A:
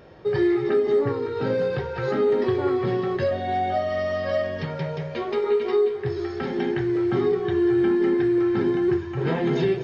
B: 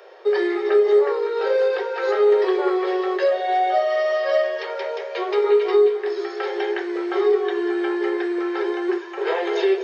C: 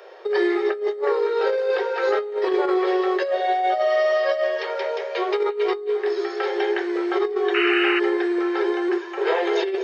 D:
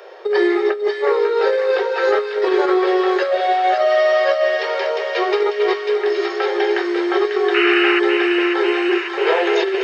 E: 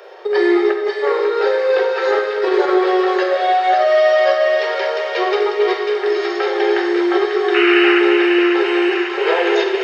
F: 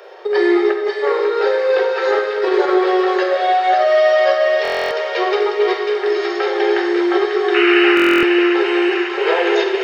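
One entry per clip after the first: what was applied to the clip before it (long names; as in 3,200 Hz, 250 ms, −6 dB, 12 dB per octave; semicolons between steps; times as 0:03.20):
Butterworth high-pass 370 Hz 96 dB per octave; level +5 dB
compressor whose output falls as the input rises −20 dBFS, ratio −0.5; sound drawn into the spectrogram noise, 0:07.54–0:08.00, 1,200–3,000 Hz −23 dBFS
delay with a high-pass on its return 545 ms, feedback 73%, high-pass 1,500 Hz, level −4.5 dB; level +4.5 dB
convolution reverb RT60 1.1 s, pre-delay 33 ms, DRR 4 dB
buffer that repeats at 0:04.63/0:07.95, samples 1,024, times 11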